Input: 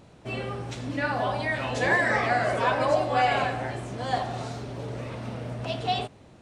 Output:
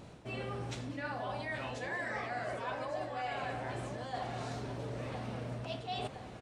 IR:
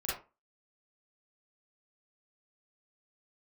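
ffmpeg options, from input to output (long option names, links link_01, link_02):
-af "aecho=1:1:1014|2028|3042:0.141|0.048|0.0163,areverse,acompressor=threshold=-38dB:ratio=6,areverse,volume=1dB"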